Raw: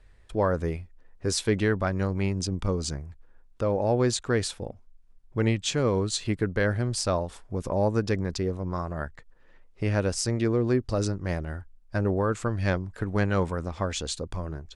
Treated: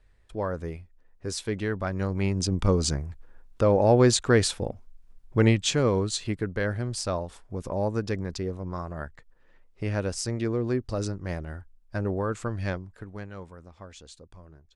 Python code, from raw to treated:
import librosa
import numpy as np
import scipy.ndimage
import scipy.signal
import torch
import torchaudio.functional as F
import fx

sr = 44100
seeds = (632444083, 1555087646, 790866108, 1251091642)

y = fx.gain(x, sr, db=fx.line((1.6, -5.5), (2.7, 5.0), (5.37, 5.0), (6.43, -3.0), (12.61, -3.0), (13.32, -16.0)))